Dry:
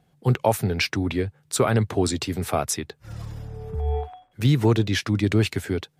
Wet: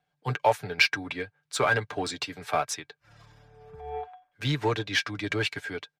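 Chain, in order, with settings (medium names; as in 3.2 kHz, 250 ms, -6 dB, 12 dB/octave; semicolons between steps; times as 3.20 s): three-band isolator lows -13 dB, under 560 Hz, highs -13 dB, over 6.2 kHz; comb 6.8 ms, depth 53%; small resonant body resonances 1.6/2.3 kHz, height 11 dB, ringing for 85 ms; in parallel at -7.5 dB: hard clipper -24 dBFS, distortion -8 dB; on the sum: upward expansion 1.5:1, over -42 dBFS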